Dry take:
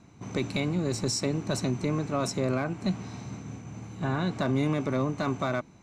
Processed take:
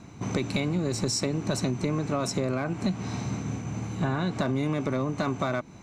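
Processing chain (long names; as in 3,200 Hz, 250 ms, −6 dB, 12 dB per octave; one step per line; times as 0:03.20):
downward compressor, threshold −32 dBFS, peak gain reduction 9.5 dB
level +8 dB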